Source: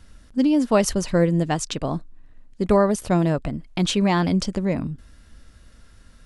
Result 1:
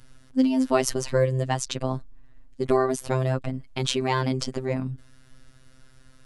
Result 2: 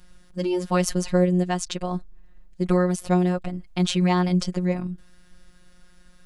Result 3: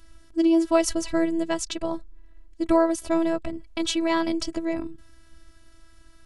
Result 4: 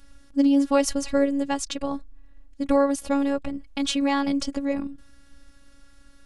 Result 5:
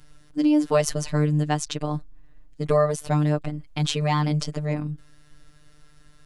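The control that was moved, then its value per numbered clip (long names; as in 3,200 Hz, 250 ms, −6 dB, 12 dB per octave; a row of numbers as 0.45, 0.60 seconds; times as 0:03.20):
phases set to zero, frequency: 130, 180, 330, 280, 150 Hertz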